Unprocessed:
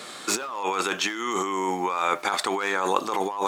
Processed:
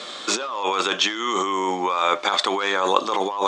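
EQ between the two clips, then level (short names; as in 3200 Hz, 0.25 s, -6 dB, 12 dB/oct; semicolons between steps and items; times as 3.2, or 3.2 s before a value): speaker cabinet 200–6800 Hz, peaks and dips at 570 Hz +6 dB, 1100 Hz +4 dB, 3400 Hz +8 dB; tilt +1.5 dB/oct; low shelf 390 Hz +8.5 dB; 0.0 dB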